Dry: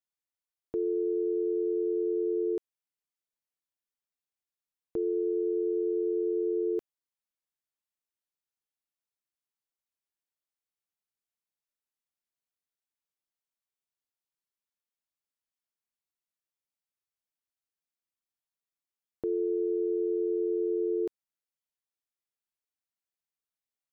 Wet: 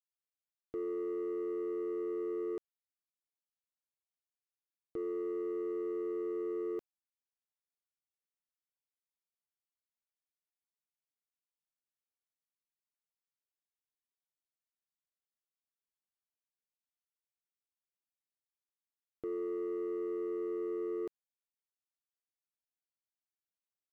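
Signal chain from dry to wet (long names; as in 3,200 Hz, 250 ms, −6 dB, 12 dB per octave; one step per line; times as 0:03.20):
leveller curve on the samples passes 1
level −9 dB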